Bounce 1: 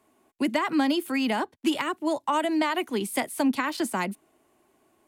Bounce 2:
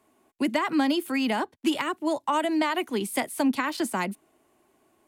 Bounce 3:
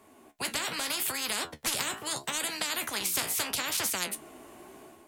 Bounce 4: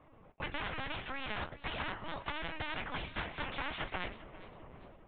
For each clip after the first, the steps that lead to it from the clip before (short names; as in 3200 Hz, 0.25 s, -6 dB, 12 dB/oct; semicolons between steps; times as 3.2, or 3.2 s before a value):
nothing audible
AGC gain up to 8 dB; flange 0.77 Hz, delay 9.5 ms, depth 8.7 ms, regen +51%; spectral compressor 10:1; gain -4 dB
LPC vocoder at 8 kHz pitch kept; LPF 2500 Hz 12 dB/oct; warbling echo 0.401 s, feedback 33%, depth 84 cents, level -18 dB; gain -2.5 dB